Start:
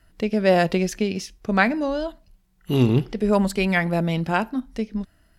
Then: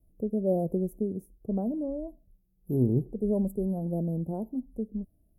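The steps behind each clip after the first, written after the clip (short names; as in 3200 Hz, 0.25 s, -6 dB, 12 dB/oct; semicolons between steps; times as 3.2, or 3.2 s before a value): inverse Chebyshev band-stop 1900–4100 Hz, stop band 80 dB; gain -6.5 dB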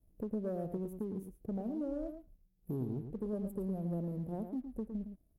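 compressor 6:1, threshold -33 dBFS, peak gain reduction 13 dB; sample leveller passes 1; outdoor echo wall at 19 m, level -8 dB; gain -5 dB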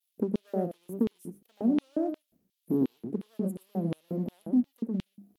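wow and flutter 130 cents; notches 50/100/150/200 Hz; LFO high-pass square 2.8 Hz 240–3200 Hz; gain +7.5 dB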